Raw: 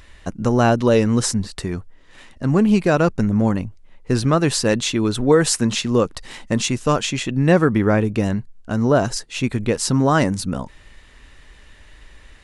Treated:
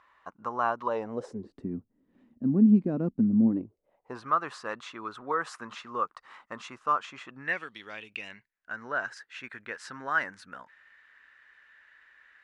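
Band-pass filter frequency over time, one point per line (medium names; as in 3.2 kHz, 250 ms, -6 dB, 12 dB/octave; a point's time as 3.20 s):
band-pass filter, Q 4.4
0.85 s 1.1 kHz
1.66 s 240 Hz
3.45 s 240 Hz
4.25 s 1.2 kHz
7.37 s 1.2 kHz
7.72 s 3.9 kHz
8.72 s 1.6 kHz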